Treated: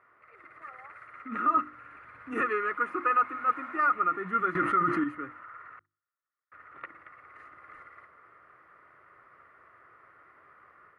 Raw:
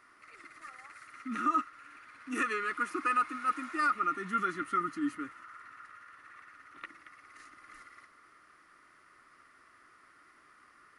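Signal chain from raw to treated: 1.57–2.41 s: tone controls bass +8 dB, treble +4 dB; 5.79–6.52 s: gate -45 dBFS, range -44 dB; FFT filter 130 Hz 0 dB, 270 Hz -11 dB, 480 Hz +2 dB, 2.2 kHz -8 dB, 5.5 kHz -30 dB, 9.6 kHz -28 dB; level rider gain up to 5.5 dB; high-pass 63 Hz; hum notches 50/100/150/200/250/300/350 Hz; 4.55–5.04 s: level flattener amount 70%; trim +3 dB

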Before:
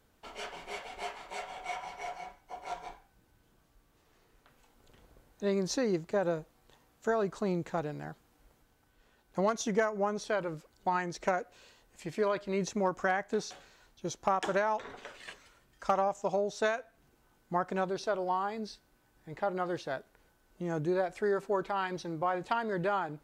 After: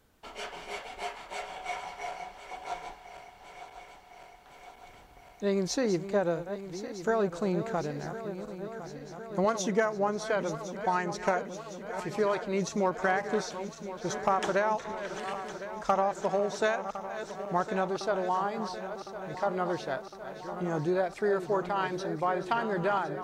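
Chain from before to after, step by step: backward echo that repeats 529 ms, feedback 81%, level -11.5 dB; 9.44–9.97 s: high-pass 83 Hz; trim +2 dB

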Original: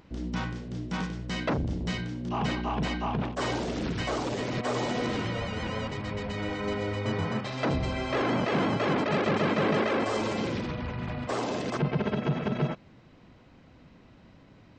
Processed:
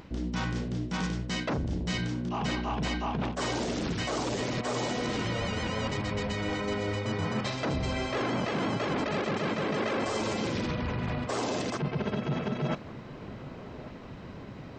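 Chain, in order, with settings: dynamic bell 7 kHz, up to +6 dB, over -53 dBFS, Q 0.75; reverse; compression 6:1, threshold -37 dBFS, peak gain reduction 14.5 dB; reverse; feedback echo behind a low-pass 1149 ms, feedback 73%, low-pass 1.7 kHz, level -17 dB; trim +8.5 dB

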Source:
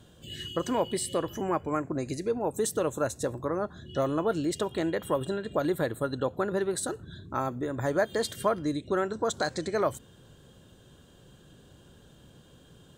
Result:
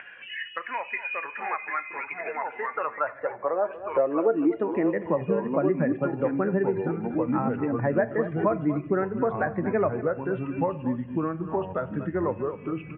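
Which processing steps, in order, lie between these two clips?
expander on every frequency bin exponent 1.5; on a send at -15 dB: reverberation RT60 0.55 s, pre-delay 17 ms; on the sum: high-pass sweep 1.9 kHz -> 160 Hz, 2.24–5.21 s; upward compressor, threshold -43 dBFS; ever faster or slower copies 568 ms, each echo -3 st, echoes 2, each echo -6 dB; rippled Chebyshev low-pass 2.6 kHz, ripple 3 dB; delay 238 ms -15 dB; three bands compressed up and down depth 70%; trim +5.5 dB

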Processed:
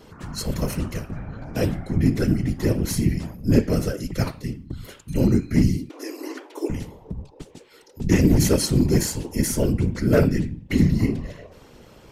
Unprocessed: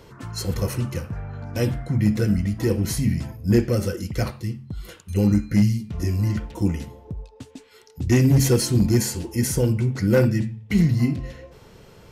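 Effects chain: vibrato 0.45 Hz 11 cents; whisper effect; 5.89–6.70 s: brick-wall FIR high-pass 270 Hz

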